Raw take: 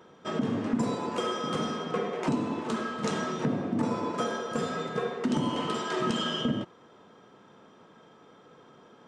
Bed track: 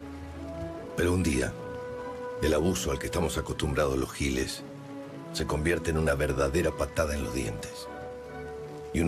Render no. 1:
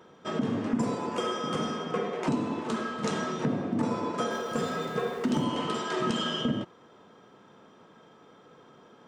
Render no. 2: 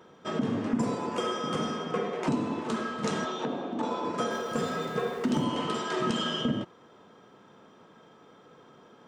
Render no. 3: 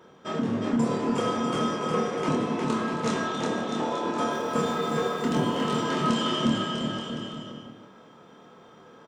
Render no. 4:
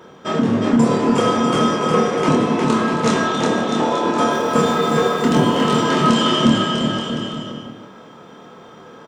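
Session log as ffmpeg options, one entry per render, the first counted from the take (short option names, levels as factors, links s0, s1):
-filter_complex "[0:a]asettb=1/sr,asplit=3[s0][s1][s2];[s0]atrim=end=0.694[s3];[s1]atrim=start=0.69:end=2.03,asetpts=PTS-STARTPTS,afade=t=in:d=0.004:c=qsin,afade=t=out:st=1.336:d=0.004:c=qsin,bandreject=f=4000:w=9.8[s4];[s2]atrim=start=2.026[s5];[s3][s4]acrossfade=d=0.004:c1=hsin:c2=qsin[s6];[s6][s5]acrossfade=d=0.004:c1=qsin:c2=hsin,asettb=1/sr,asplit=3[s7][s8][s9];[s7]atrim=end=4.314[s10];[s8]atrim=start=4.31:end=5.44,asetpts=PTS-STARTPTS,afade=t=in:d=0.004:c=qsin,afade=t=out:st=1.126:d=0.004:c=qsin,aeval=exprs='val(0)+0.5*0.00562*sgn(val(0))':c=same[s11];[s9]atrim=start=5.436[s12];[s10][s11]acrossfade=d=0.004:c1=hsin:c2=qsin[s13];[s13][s12]acrossfade=d=0.004:c1=qsin:c2=hsin"
-filter_complex "[0:a]asettb=1/sr,asplit=3[s0][s1][s2];[s0]atrim=end=3.254[s3];[s1]atrim=start=3.25:end=4.05,asetpts=PTS-STARTPTS,afade=t=in:d=0.004:c=qsin,afade=t=out:st=0.796:d=0.004:c=qsin,highpass=310,equalizer=f=820:t=q:w=4:g=5,equalizer=f=2000:t=q:w=4:g=-6,equalizer=f=3500:t=q:w=4:g=8,equalizer=f=5000:t=q:w=4:g=-6,lowpass=f=7100:w=0.5412,lowpass=f=7100:w=1.3066[s4];[s2]atrim=start=4.046[s5];[s3][s4]acrossfade=d=0.004:c1=hsin:c2=qsin[s6];[s6][s5]acrossfade=d=0.004:c1=qsin:c2=hsin"
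-filter_complex "[0:a]asplit=2[s0][s1];[s1]adelay=26,volume=0.668[s2];[s0][s2]amix=inputs=2:normalize=0,asplit=2[s3][s4];[s4]aecho=0:1:360|648|878.4|1063|1210:0.631|0.398|0.251|0.158|0.1[s5];[s3][s5]amix=inputs=2:normalize=0"
-af "volume=3.16,alimiter=limit=0.708:level=0:latency=1"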